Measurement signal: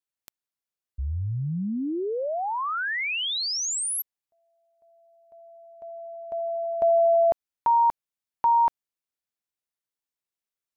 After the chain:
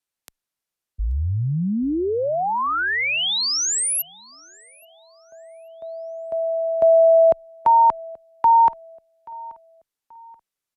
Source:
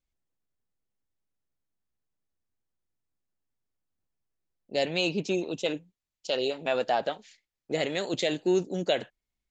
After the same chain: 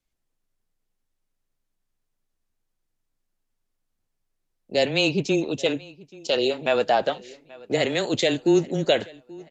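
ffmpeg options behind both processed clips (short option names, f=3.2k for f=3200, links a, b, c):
-filter_complex "[0:a]afreqshift=-15,asplit=2[a][b];[b]adelay=831,lowpass=f=5k:p=1,volume=-22.5dB,asplit=2[c][d];[d]adelay=831,lowpass=f=5k:p=1,volume=0.37,asplit=2[e][f];[f]adelay=831,lowpass=f=5k:p=1,volume=0.37[g];[a][c][e][g]amix=inputs=4:normalize=0,aresample=32000,aresample=44100,volume=6dB"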